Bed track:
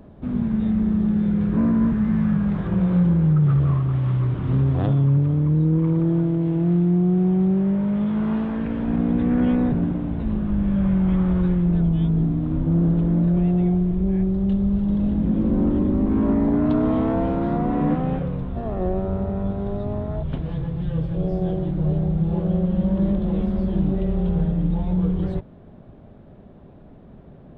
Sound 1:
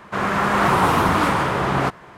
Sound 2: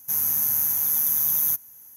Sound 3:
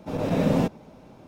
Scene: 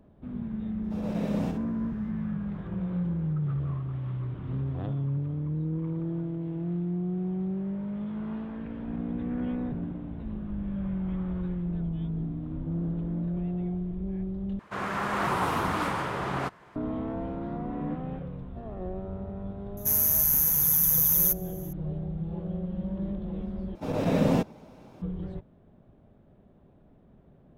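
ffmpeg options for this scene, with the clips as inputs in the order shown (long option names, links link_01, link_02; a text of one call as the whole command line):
ffmpeg -i bed.wav -i cue0.wav -i cue1.wav -i cue2.wav -filter_complex "[3:a]asplit=2[link_01][link_02];[0:a]volume=-12dB[link_03];[link_01]aecho=1:1:63|126|189:0.501|0.12|0.0289[link_04];[link_03]asplit=3[link_05][link_06][link_07];[link_05]atrim=end=14.594[link_08];[1:a]atrim=end=2.17,asetpts=PTS-STARTPTS,volume=-10.5dB[link_09];[link_06]atrim=start=16.756:end=23.754[link_10];[link_02]atrim=end=1.27,asetpts=PTS-STARTPTS,volume=-1.5dB[link_11];[link_07]atrim=start=25.016[link_12];[link_04]atrim=end=1.27,asetpts=PTS-STARTPTS,volume=-11dB,afade=type=in:duration=0.004:curve=hsin,afade=type=out:start_time=1.266:duration=0.004:curve=hsin,adelay=840[link_13];[2:a]atrim=end=1.96,asetpts=PTS-STARTPTS,volume=-0.5dB,afade=type=in:duration=0.004:curve=hsin,afade=type=out:start_time=1.956:duration=0.004:curve=hsin,adelay=19770[link_14];[link_08][link_09]acrossfade=duration=0.004:curve1=hsin:curve2=hsin[link_15];[link_15][link_10]acrossfade=duration=0.004:curve1=hsin:curve2=hsin[link_16];[link_16][link_11]acrossfade=duration=0.004:curve1=hsin:curve2=hsin[link_17];[link_17][link_12]acrossfade=duration=0.004:curve1=hsin:curve2=hsin[link_18];[link_18][link_13][link_14]amix=inputs=3:normalize=0" out.wav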